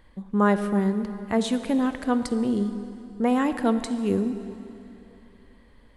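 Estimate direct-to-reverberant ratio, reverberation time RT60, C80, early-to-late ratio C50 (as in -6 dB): 10.0 dB, 3.0 s, 11.0 dB, 10.5 dB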